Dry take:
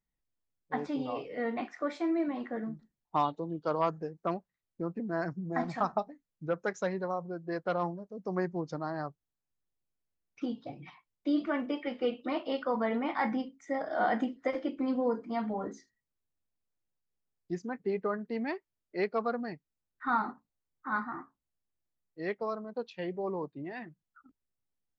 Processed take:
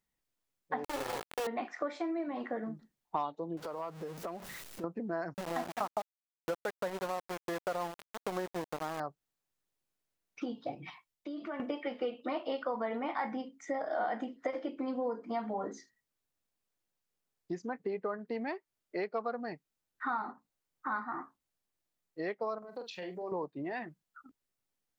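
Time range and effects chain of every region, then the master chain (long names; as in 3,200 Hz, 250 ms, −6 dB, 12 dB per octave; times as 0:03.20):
0:00.84–0:01.47: lower of the sound and its delayed copy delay 2.3 ms + low-pass filter 1,200 Hz 24 dB per octave + bit-depth reduction 6 bits, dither none
0:03.57–0:04.84: converter with a step at zero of −42.5 dBFS + downward compressor, threshold −43 dBFS
0:05.34–0:09.00: high-shelf EQ 4,300 Hz −8 dB + centre clipping without the shift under −34.5 dBFS
0:10.75–0:11.60: downward compressor 12 to 1, threshold −41 dBFS + multiband upward and downward expander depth 40%
0:22.58–0:23.32: high-shelf EQ 4,200 Hz +10.5 dB + downward compressor 4 to 1, threshold −46 dBFS + double-tracking delay 44 ms −7.5 dB
whole clip: low-shelf EQ 160 Hz −10 dB; downward compressor 4 to 1, threshold −42 dBFS; dynamic equaliser 700 Hz, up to +4 dB, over −53 dBFS, Q 0.87; level +5.5 dB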